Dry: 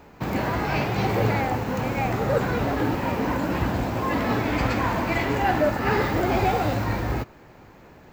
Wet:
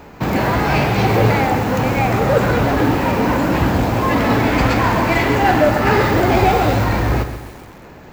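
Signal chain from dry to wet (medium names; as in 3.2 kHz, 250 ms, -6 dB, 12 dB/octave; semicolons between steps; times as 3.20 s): in parallel at -12 dB: wavefolder -25.5 dBFS; on the sum: bit-crushed delay 133 ms, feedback 55%, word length 7-bit, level -10 dB; trim +7.5 dB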